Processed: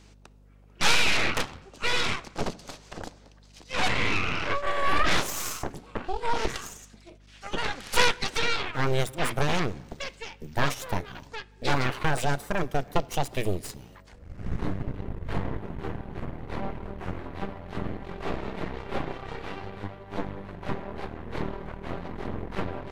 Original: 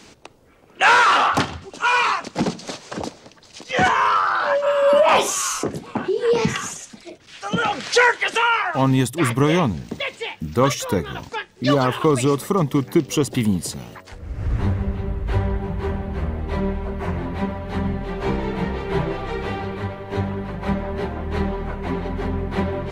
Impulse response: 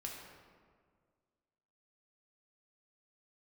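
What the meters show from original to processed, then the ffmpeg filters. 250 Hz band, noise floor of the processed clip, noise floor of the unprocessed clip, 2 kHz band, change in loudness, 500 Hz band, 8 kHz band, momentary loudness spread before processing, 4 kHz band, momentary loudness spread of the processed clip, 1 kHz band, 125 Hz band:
−12.0 dB, −54 dBFS, −48 dBFS, −7.0 dB, −9.0 dB, −11.5 dB, −7.5 dB, 14 LU, −3.5 dB, 14 LU, −10.5 dB, −9.5 dB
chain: -filter_complex "[0:a]aeval=exprs='0.708*(cos(1*acos(clip(val(0)/0.708,-1,1)))-cos(1*PI/2))+0.316*(cos(3*acos(clip(val(0)/0.708,-1,1)))-cos(3*PI/2))+0.0224*(cos(5*acos(clip(val(0)/0.708,-1,1)))-cos(5*PI/2))+0.0891*(cos(6*acos(clip(val(0)/0.708,-1,1)))-cos(6*PI/2))+0.00794*(cos(7*acos(clip(val(0)/0.708,-1,1)))-cos(7*PI/2))':channel_layout=same,asplit=2[link_01][link_02];[1:a]atrim=start_sample=2205,afade=type=out:start_time=0.41:duration=0.01,atrim=end_sample=18522[link_03];[link_02][link_03]afir=irnorm=-1:irlink=0,volume=-15.5dB[link_04];[link_01][link_04]amix=inputs=2:normalize=0,aeval=exprs='val(0)+0.00251*(sin(2*PI*50*n/s)+sin(2*PI*2*50*n/s)/2+sin(2*PI*3*50*n/s)/3+sin(2*PI*4*50*n/s)/4+sin(2*PI*5*50*n/s)/5)':channel_layout=same,volume=-1.5dB"

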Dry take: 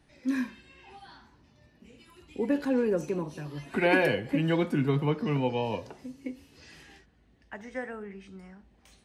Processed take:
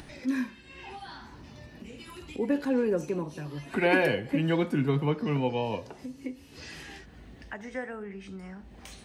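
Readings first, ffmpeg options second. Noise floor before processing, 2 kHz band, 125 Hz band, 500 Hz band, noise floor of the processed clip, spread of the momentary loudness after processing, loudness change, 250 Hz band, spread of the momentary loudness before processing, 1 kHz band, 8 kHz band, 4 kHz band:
−63 dBFS, 0.0 dB, 0.0 dB, 0.0 dB, −51 dBFS, 19 LU, −0.5 dB, 0.0 dB, 20 LU, 0.0 dB, can't be measured, +0.5 dB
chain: -af "acompressor=mode=upward:threshold=-34dB:ratio=2.5"

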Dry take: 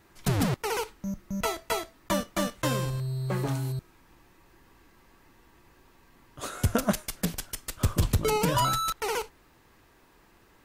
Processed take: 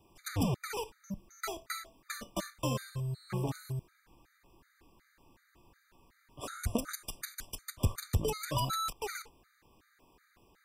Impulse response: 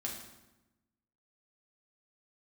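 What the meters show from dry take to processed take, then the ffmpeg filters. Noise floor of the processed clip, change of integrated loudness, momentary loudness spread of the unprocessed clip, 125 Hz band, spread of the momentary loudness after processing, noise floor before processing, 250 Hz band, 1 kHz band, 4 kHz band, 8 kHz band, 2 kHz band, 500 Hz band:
−71 dBFS, −7.5 dB, 10 LU, −7.0 dB, 11 LU, −60 dBFS, −8.0 dB, −9.0 dB, −7.0 dB, −7.0 dB, −8.0 dB, −9.0 dB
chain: -filter_complex "[0:a]acrossover=split=290|3000[link_01][link_02][link_03];[link_02]acompressor=threshold=-28dB:ratio=6[link_04];[link_01][link_04][link_03]amix=inputs=3:normalize=0,afftfilt=real='re*gt(sin(2*PI*2.7*pts/sr)*(1-2*mod(floor(b*sr/1024/1200),2)),0)':imag='im*gt(sin(2*PI*2.7*pts/sr)*(1-2*mod(floor(b*sr/1024/1200),2)),0)':win_size=1024:overlap=0.75,volume=-3.5dB"

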